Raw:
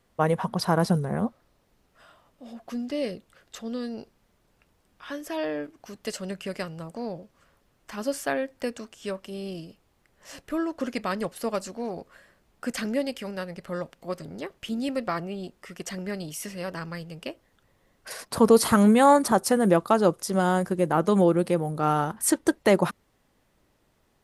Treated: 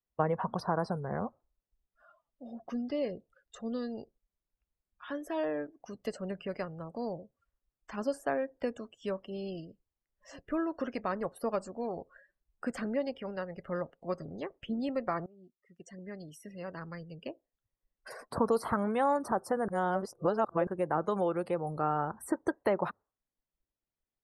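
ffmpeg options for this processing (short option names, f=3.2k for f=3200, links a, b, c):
-filter_complex "[0:a]asplit=4[a][b][c][d];[a]atrim=end=15.26,asetpts=PTS-STARTPTS,afade=t=out:st=15.256:d=0.004:c=hsin:silence=0.0794328[e];[b]atrim=start=15.26:end=19.682,asetpts=PTS-STARTPTS,afade=t=in:d=2.85:silence=0.0794328[f];[c]atrim=start=19.678:end=20.672,asetpts=PTS-STARTPTS,areverse[g];[d]atrim=start=20.668[h];[e][f]concat=n=2:v=0:a=1[i];[i][g]acrossfade=d=0.004:c1=hsin:c2=hsin[j];[j][h]acrossfade=d=0.004:c1=hsin:c2=hsin,acrossover=split=580|1500[k][l][m];[k]acompressor=threshold=-28dB:ratio=4[n];[l]acompressor=threshold=-27dB:ratio=4[o];[m]acompressor=threshold=-47dB:ratio=4[p];[n][o][p]amix=inputs=3:normalize=0,afftdn=nr=28:nf=-48,adynamicequalizer=threshold=0.00708:dfrequency=210:dqfactor=1:tfrequency=210:tqfactor=1:attack=5:release=100:ratio=0.375:range=3:mode=cutabove:tftype=bell,volume=-2dB"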